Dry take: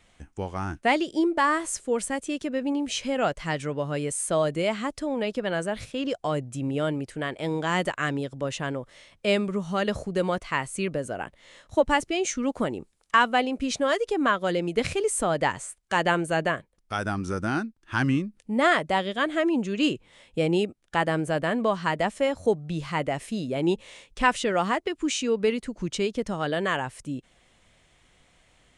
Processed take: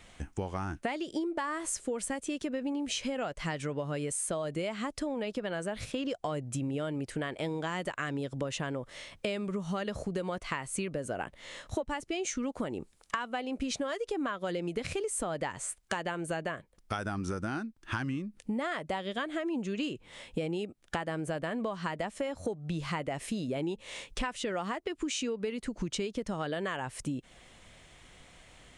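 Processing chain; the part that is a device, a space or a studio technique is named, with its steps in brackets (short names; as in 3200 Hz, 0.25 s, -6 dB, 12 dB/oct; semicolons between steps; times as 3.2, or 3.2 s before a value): serial compression, leveller first (compressor 2:1, threshold -26 dBFS, peak gain reduction 7 dB; compressor 6:1, threshold -37 dBFS, peak gain reduction 16 dB); gain +5.5 dB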